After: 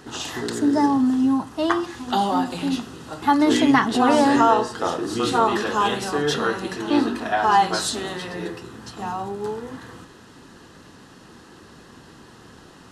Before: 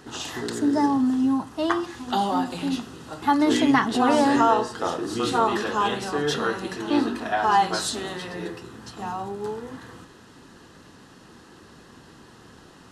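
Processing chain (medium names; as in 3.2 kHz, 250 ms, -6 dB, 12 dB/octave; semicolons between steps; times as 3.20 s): 5.70–6.18 s: treble shelf 7.6 kHz +5.5 dB; trim +2.5 dB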